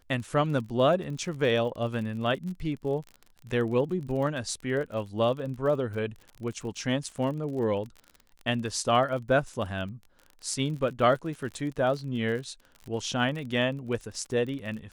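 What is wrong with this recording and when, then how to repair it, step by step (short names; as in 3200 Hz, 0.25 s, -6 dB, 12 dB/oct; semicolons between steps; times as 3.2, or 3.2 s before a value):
crackle 38/s -36 dBFS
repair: de-click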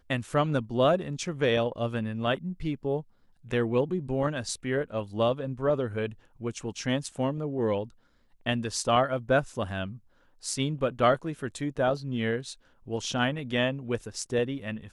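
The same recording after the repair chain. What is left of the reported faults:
none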